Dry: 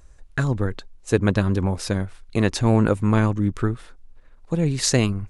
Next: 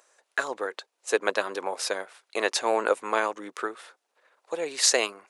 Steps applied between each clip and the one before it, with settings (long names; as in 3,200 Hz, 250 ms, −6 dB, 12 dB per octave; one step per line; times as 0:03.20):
high-pass filter 480 Hz 24 dB per octave
level +1.5 dB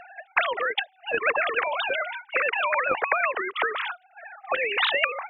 three sine waves on the formant tracks
every bin compressed towards the loudest bin 4 to 1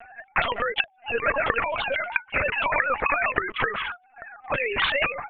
linear-prediction vocoder at 8 kHz pitch kept